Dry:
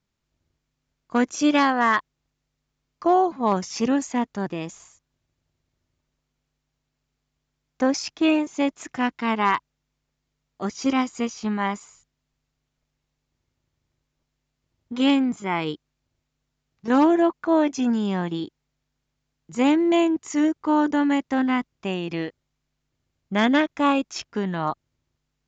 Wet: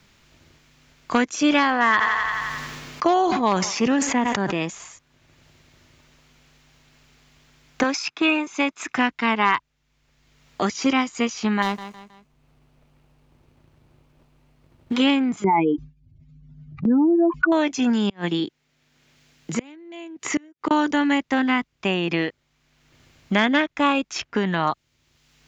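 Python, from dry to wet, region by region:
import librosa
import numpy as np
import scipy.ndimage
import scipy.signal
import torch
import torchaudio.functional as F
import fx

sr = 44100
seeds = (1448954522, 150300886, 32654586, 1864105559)

y = fx.chain(x, sr, fx.echo_thinned(ms=87, feedback_pct=53, hz=380.0, wet_db=-22),
    fx.sustainer(db_per_s=38.0), at=(1.39, 4.63))
y = fx.chain(y, sr, fx.highpass(hz=480.0, slope=6),
    fx.comb(ms=0.8, depth=0.34), at=(7.83, 8.97))
y = fx.chain(y, sr, fx.median_filter(points=25),
    fx.echo_feedback(ms=159, feedback_pct=27, wet_db=-15), at=(11.62, 14.94))
y = fx.chain(y, sr, fx.spec_expand(power=3.0),
    fx.gate_hold(open_db=-36.0, close_db=-41.0, hold_ms=71.0, range_db=-21, attack_ms=1.4, release_ms=100.0),
    fx.env_flatten(amount_pct=70), at=(15.44, 17.52))
y = fx.chain(y, sr, fx.highpass(hz=140.0, slope=6),
    fx.peak_eq(hz=1000.0, db=-4.5, octaves=1.3),
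    fx.gate_flip(shuts_db=-18.0, range_db=-33), at=(18.09, 20.71))
y = fx.peak_eq(y, sr, hz=2400.0, db=6.5, octaves=1.9)
y = fx.band_squash(y, sr, depth_pct=70)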